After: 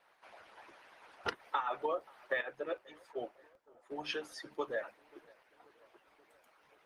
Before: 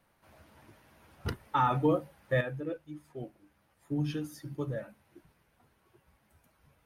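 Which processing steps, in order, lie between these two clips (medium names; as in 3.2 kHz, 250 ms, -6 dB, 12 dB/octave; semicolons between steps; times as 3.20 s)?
1.77–3.93 s: expander -58 dBFS; three-band isolator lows -22 dB, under 390 Hz, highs -17 dB, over 5.9 kHz; harmonic-percussive split harmonic -15 dB; bass shelf 190 Hz -9.5 dB; compression 16:1, threshold -42 dBFS, peak gain reduction 15 dB; tape echo 533 ms, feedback 74%, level -23.5 dB, low-pass 1.7 kHz; crackling interface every 0.77 s, samples 64, repeat, from 0.47 s; trim +11.5 dB; Opus 24 kbps 48 kHz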